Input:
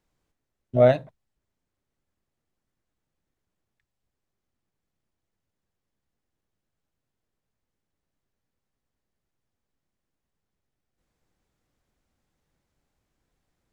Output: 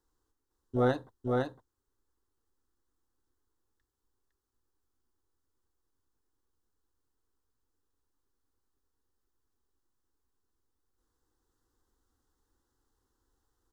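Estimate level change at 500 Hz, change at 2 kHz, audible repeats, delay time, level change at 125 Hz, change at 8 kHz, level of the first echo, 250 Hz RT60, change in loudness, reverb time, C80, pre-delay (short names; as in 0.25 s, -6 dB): -10.0 dB, -3.5 dB, 1, 0.508 s, -6.5 dB, n/a, -3.0 dB, none, -10.5 dB, none, none, none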